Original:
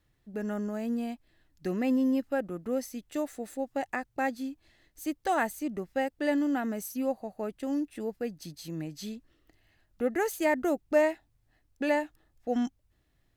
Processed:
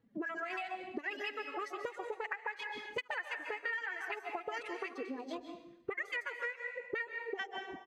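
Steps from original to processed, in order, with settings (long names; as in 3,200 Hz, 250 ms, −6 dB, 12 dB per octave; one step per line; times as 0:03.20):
feedback delay that plays each chunk backwards 143 ms, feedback 53%, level −14 dB
phase-vocoder pitch shift with formants kept +8 semitones
low-shelf EQ 160 Hz −11 dB
envelope filter 230–2,000 Hz, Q 3, up, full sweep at −31.5 dBFS
on a send: single-tap delay 75 ms −22 dB
on the sum: reverb reduction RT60 0.69 s
tempo change 1.7×
high-shelf EQ 10,000 Hz −9 dB
dense smooth reverb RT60 0.59 s, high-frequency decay 1×, pre-delay 120 ms, DRR 9 dB
downward compressor 10 to 1, threshold −53 dBFS, peak gain reduction 19.5 dB
one half of a high-frequency compander encoder only
level +17 dB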